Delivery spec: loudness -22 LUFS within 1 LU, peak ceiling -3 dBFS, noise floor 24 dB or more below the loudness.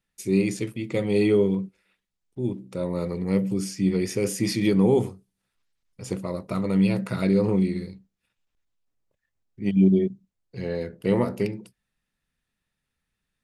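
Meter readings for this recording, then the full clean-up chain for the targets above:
loudness -24.5 LUFS; peak level -8.0 dBFS; loudness target -22.0 LUFS
-> trim +2.5 dB

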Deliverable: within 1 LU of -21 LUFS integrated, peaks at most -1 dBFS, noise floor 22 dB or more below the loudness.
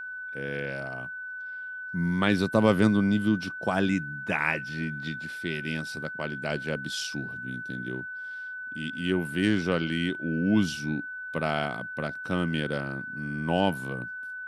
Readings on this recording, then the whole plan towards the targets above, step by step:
steady tone 1.5 kHz; tone level -35 dBFS; loudness -29.0 LUFS; peak level -7.0 dBFS; loudness target -21.0 LUFS
-> band-stop 1.5 kHz, Q 30; trim +8 dB; peak limiter -1 dBFS

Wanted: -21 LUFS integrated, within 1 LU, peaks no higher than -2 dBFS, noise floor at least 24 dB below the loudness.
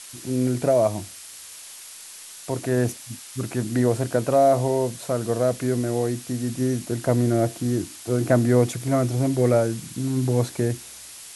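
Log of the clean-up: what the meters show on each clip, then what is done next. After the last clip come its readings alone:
noise floor -42 dBFS; noise floor target -47 dBFS; loudness -23.0 LUFS; peak level -5.0 dBFS; loudness target -21.0 LUFS
-> noise reduction 6 dB, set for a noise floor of -42 dBFS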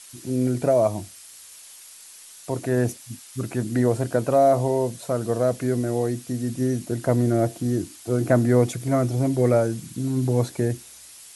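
noise floor -46 dBFS; noise floor target -47 dBFS
-> noise reduction 6 dB, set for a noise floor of -46 dBFS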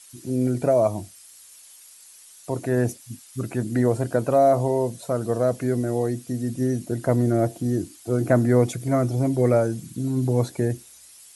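noise floor -49 dBFS; loudness -23.5 LUFS; peak level -5.0 dBFS; loudness target -21.0 LUFS
-> trim +2.5 dB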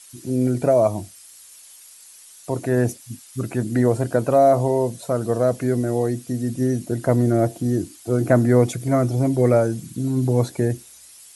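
loudness -21.0 LUFS; peak level -2.5 dBFS; noise floor -46 dBFS

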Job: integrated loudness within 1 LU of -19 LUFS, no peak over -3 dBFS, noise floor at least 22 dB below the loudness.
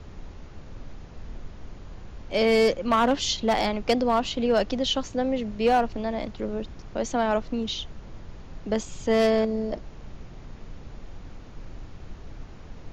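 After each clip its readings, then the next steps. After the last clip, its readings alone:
clipped samples 0.5%; clipping level -14.0 dBFS; noise floor -44 dBFS; noise floor target -47 dBFS; loudness -25.0 LUFS; peak level -14.0 dBFS; loudness target -19.0 LUFS
-> clip repair -14 dBFS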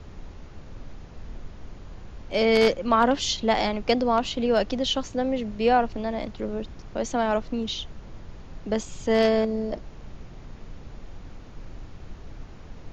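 clipped samples 0.0%; noise floor -44 dBFS; noise floor target -47 dBFS
-> noise print and reduce 6 dB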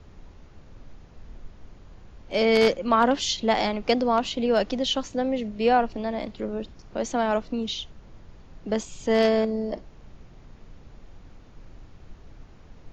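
noise floor -50 dBFS; loudness -24.5 LUFS; peak level -5.0 dBFS; loudness target -19.0 LUFS
-> trim +5.5 dB; peak limiter -3 dBFS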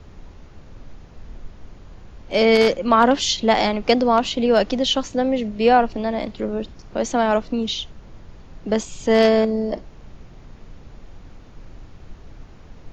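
loudness -19.5 LUFS; peak level -3.0 dBFS; noise floor -44 dBFS

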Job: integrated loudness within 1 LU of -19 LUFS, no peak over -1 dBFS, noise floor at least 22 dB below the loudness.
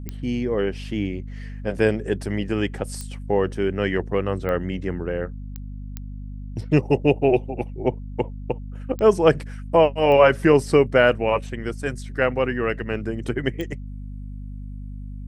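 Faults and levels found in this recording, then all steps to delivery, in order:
clicks found 8; hum 50 Hz; highest harmonic 250 Hz; hum level -31 dBFS; loudness -22.5 LUFS; peak level -2.0 dBFS; loudness target -19.0 LUFS
-> de-click; de-hum 50 Hz, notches 5; trim +3.5 dB; peak limiter -1 dBFS

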